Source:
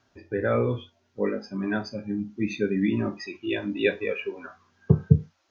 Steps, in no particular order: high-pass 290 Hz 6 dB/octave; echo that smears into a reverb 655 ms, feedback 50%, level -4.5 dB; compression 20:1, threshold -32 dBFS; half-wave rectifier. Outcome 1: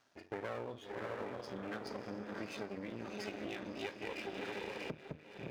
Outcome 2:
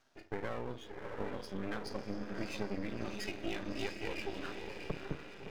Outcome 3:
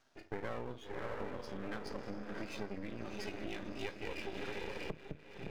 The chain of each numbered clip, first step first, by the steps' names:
echo that smears into a reverb > compression > half-wave rectifier > high-pass; high-pass > compression > echo that smears into a reverb > half-wave rectifier; echo that smears into a reverb > compression > high-pass > half-wave rectifier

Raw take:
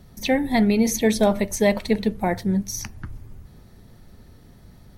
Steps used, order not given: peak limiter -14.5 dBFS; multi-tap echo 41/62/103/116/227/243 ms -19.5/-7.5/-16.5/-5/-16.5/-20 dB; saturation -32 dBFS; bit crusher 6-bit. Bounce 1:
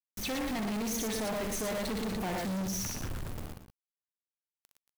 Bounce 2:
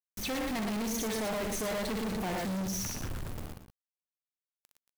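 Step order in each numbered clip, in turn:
bit crusher > peak limiter > multi-tap echo > saturation; bit crusher > multi-tap echo > saturation > peak limiter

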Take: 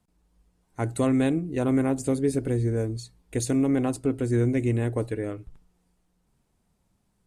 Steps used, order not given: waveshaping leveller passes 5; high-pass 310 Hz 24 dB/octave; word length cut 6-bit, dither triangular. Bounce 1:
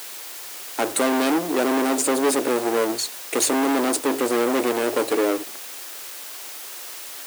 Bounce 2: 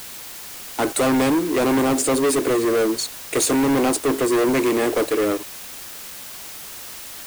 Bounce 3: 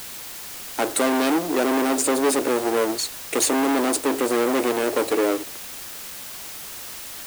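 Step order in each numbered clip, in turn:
waveshaping leveller > word length cut > high-pass; high-pass > waveshaping leveller > word length cut; waveshaping leveller > high-pass > word length cut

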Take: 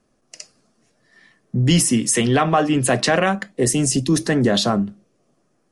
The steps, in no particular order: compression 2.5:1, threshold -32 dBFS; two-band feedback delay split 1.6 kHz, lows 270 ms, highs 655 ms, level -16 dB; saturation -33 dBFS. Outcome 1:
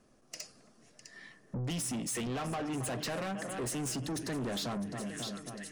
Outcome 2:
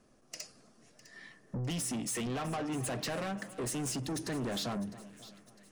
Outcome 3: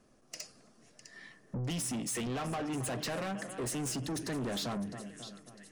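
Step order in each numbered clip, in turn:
two-band feedback delay > compression > saturation; compression > saturation > two-band feedback delay; compression > two-band feedback delay > saturation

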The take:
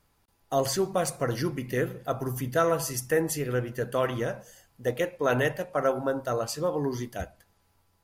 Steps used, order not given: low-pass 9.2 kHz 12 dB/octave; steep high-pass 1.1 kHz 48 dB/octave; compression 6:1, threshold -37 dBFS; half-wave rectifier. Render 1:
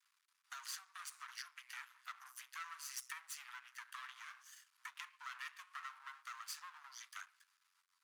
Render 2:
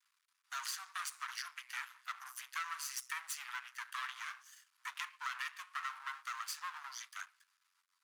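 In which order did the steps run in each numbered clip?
low-pass > half-wave rectifier > compression > steep high-pass; low-pass > half-wave rectifier > steep high-pass > compression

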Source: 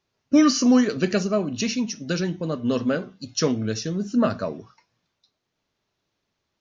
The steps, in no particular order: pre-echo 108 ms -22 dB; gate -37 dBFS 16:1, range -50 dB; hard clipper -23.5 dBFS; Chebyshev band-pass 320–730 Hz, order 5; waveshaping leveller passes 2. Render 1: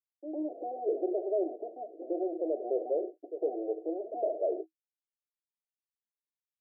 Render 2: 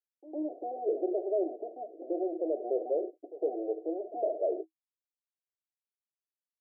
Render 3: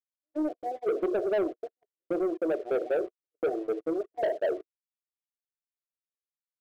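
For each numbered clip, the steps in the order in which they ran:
gate > pre-echo > hard clipper > waveshaping leveller > Chebyshev band-pass; hard clipper > gate > pre-echo > waveshaping leveller > Chebyshev band-pass; pre-echo > hard clipper > Chebyshev band-pass > gate > waveshaping leveller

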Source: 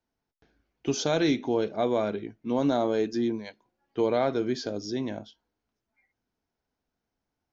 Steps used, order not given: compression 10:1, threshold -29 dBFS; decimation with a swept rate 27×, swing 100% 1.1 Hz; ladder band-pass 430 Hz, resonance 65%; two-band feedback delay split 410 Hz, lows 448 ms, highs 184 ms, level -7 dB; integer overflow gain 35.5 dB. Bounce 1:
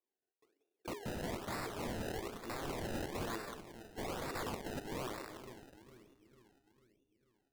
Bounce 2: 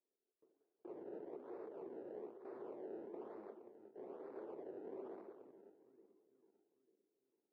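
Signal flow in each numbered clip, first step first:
ladder band-pass > compression > integer overflow > two-band feedback delay > decimation with a swept rate; compression > integer overflow > two-band feedback delay > decimation with a swept rate > ladder band-pass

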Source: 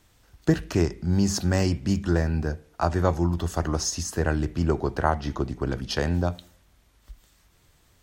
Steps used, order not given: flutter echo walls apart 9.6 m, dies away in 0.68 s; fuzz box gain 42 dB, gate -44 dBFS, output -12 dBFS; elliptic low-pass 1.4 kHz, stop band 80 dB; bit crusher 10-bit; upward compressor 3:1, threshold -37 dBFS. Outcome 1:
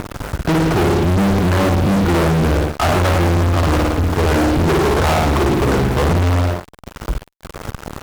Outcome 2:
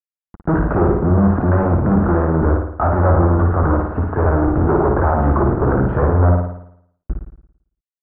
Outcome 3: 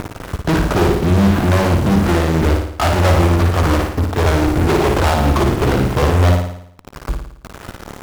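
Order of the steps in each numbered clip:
elliptic low-pass > upward compressor > bit crusher > flutter echo > fuzz box; fuzz box > bit crusher > elliptic low-pass > upward compressor > flutter echo; elliptic low-pass > upward compressor > bit crusher > fuzz box > flutter echo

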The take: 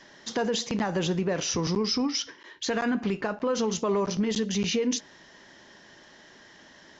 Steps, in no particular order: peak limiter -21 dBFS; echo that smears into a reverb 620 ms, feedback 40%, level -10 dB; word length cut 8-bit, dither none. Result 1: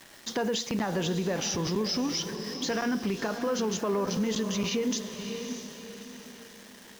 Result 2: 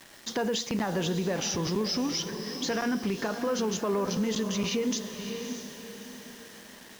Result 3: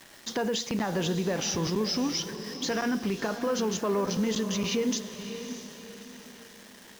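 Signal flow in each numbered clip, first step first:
word length cut > echo that smears into a reverb > peak limiter; echo that smears into a reverb > peak limiter > word length cut; peak limiter > word length cut > echo that smears into a reverb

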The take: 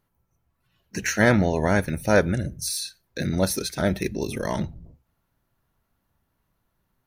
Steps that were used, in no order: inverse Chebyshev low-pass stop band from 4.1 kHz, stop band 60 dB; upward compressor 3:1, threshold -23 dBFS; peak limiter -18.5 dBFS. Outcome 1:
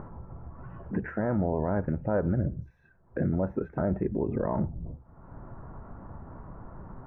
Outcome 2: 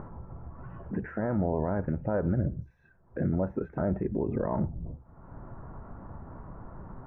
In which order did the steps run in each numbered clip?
upward compressor > inverse Chebyshev low-pass > peak limiter; upward compressor > peak limiter > inverse Chebyshev low-pass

